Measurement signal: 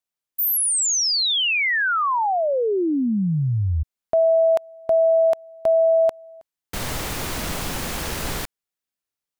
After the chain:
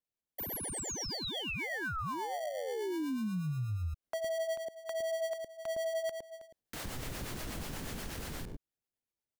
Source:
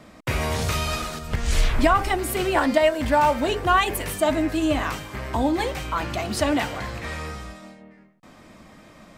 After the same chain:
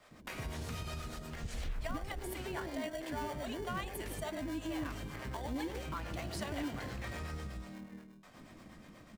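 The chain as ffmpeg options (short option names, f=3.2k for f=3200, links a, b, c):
-filter_complex "[0:a]acrossover=split=560[a][b];[a]adelay=110[c];[c][b]amix=inputs=2:normalize=0,asplit=2[d][e];[e]acrusher=samples=34:mix=1:aa=0.000001,volume=-4dB[f];[d][f]amix=inputs=2:normalize=0,dynaudnorm=f=420:g=9:m=11.5dB,acrossover=split=420[g][h];[g]aeval=exprs='val(0)*(1-0.5/2+0.5/2*cos(2*PI*8.3*n/s))':c=same[i];[h]aeval=exprs='val(0)*(1-0.5/2-0.5/2*cos(2*PI*8.3*n/s))':c=same[j];[i][j]amix=inputs=2:normalize=0,acompressor=threshold=-32dB:ratio=2.5:attack=1.9:release=267:knee=1:detection=peak,volume=-8dB"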